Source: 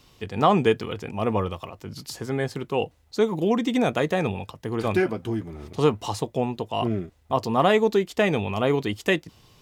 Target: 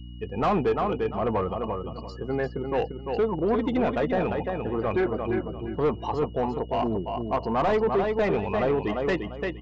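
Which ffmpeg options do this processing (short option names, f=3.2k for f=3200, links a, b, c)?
-filter_complex "[0:a]afftdn=nr=24:nf=-34,aeval=exprs='val(0)+0.00282*sin(2*PI*2900*n/s)':c=same,asplit=2[a][b];[b]highpass=f=720:p=1,volume=12dB,asoftclip=type=tanh:threshold=-5.5dB[c];[a][c]amix=inputs=2:normalize=0,lowpass=f=2.2k:p=1,volume=-6dB,aecho=1:1:346|692|1038:0.473|0.109|0.025,aresample=16000,asoftclip=type=tanh:threshold=-17.5dB,aresample=44100,aeval=exprs='val(0)+0.0112*(sin(2*PI*60*n/s)+sin(2*PI*2*60*n/s)/2+sin(2*PI*3*60*n/s)/3+sin(2*PI*4*60*n/s)/4+sin(2*PI*5*60*n/s)/5)':c=same,highshelf=f=2k:g=-10.5"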